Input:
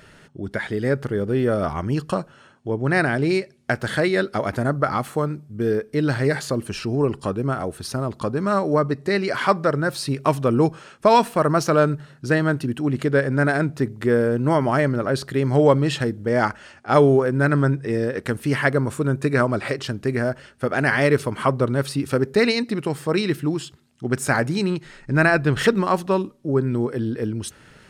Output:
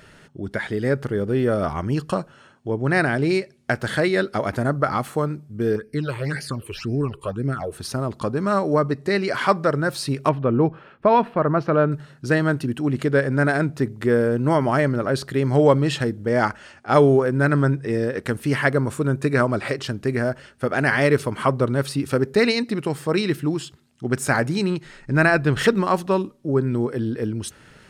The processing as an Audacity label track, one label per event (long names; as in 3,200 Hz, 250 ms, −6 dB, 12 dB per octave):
5.760000	7.720000	all-pass phaser stages 8, 1.9 Hz, lowest notch 200–1,100 Hz
10.290000	11.920000	high-frequency loss of the air 410 metres